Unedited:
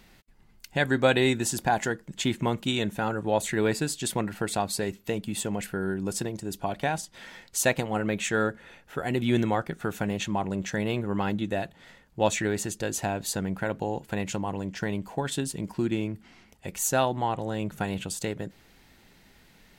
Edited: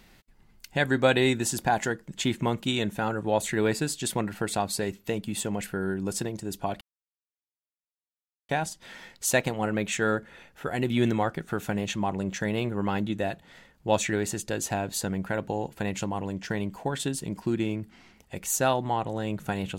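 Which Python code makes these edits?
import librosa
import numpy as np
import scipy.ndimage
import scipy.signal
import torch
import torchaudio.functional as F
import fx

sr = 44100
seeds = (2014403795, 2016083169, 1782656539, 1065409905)

y = fx.edit(x, sr, fx.insert_silence(at_s=6.81, length_s=1.68), tone=tone)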